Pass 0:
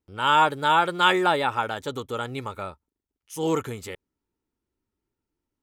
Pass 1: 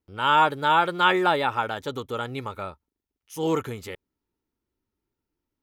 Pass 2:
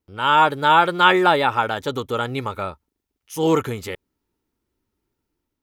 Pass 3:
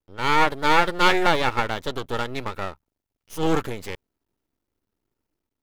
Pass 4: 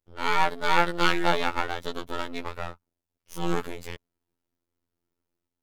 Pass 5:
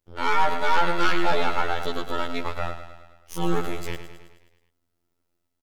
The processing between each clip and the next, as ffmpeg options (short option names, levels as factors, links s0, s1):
-filter_complex "[0:a]equalizer=f=8100:t=o:w=0.54:g=-6.5,acrossover=split=3300[s0][s1];[s1]alimiter=level_in=1.5:limit=0.0631:level=0:latency=1:release=106,volume=0.668[s2];[s0][s2]amix=inputs=2:normalize=0"
-af "dynaudnorm=f=180:g=5:m=1.58,volume=1.33"
-af "aeval=exprs='max(val(0),0)':c=same"
-af "afftfilt=real='hypot(re,im)*cos(PI*b)':imag='0':win_size=2048:overlap=0.75,volume=0.891"
-filter_complex "[0:a]asplit=2[s0][s1];[s1]aecho=0:1:106|212|318|424|530|636|742:0.251|0.148|0.0874|0.0516|0.0304|0.018|0.0106[s2];[s0][s2]amix=inputs=2:normalize=0,asoftclip=type=tanh:threshold=0.2,volume=1.88"